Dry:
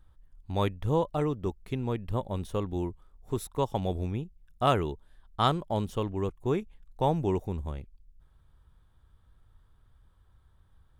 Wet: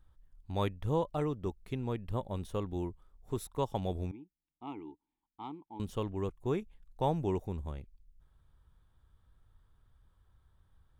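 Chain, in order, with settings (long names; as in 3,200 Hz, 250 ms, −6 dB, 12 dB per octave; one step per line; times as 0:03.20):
0:04.11–0:05.80: formant filter u
level −4.5 dB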